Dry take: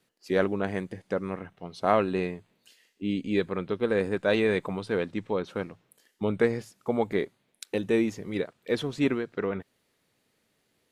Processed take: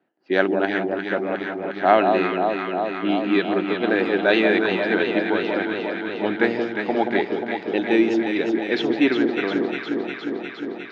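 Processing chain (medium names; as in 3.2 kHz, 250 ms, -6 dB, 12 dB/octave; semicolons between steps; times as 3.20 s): cabinet simulation 310–5200 Hz, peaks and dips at 320 Hz +6 dB, 480 Hz -9 dB, 740 Hz +4 dB, 1.1 kHz -7 dB, 1.6 kHz +4 dB, 2.9 kHz +3 dB; level-controlled noise filter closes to 1.1 kHz, open at -24 dBFS; echo whose repeats swap between lows and highs 178 ms, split 1.1 kHz, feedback 87%, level -4 dB; trim +7.5 dB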